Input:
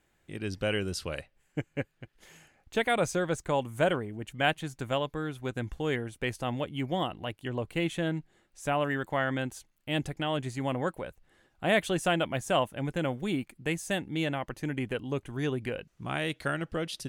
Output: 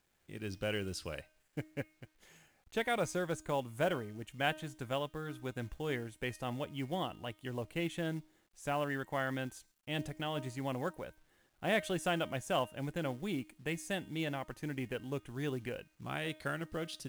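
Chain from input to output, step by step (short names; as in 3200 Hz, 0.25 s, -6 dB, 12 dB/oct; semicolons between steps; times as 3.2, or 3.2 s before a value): de-hum 310.7 Hz, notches 35; companded quantiser 6-bit; gain -6.5 dB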